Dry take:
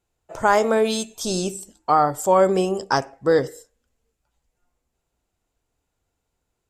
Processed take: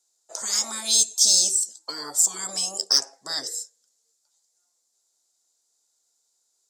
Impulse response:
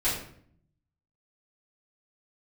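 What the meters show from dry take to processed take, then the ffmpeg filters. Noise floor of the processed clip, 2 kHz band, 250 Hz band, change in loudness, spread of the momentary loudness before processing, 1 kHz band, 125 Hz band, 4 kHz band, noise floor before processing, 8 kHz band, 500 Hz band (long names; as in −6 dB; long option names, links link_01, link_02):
−72 dBFS, −12.0 dB, −20.0 dB, −0.5 dB, 8 LU, −20.5 dB, below −20 dB, +10.5 dB, −78 dBFS, +14.0 dB, −24.0 dB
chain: -af "highpass=460,lowpass=6000,afftfilt=real='re*lt(hypot(re,im),0.224)':imag='im*lt(hypot(re,im),0.224)':win_size=1024:overlap=0.75,aexciter=amount=8.7:drive=9.5:freq=4200,volume=-6dB"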